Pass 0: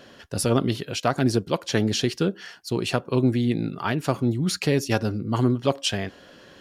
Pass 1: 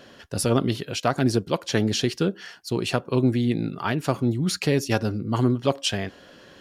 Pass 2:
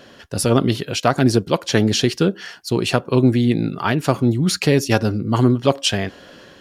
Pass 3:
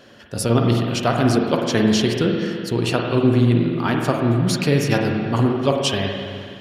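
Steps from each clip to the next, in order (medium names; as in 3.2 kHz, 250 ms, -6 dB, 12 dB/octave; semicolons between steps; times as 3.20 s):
no audible change
level rider gain up to 3 dB; trim +3.5 dB
spring tank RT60 2.2 s, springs 42/51 ms, chirp 70 ms, DRR 1 dB; trim -3.5 dB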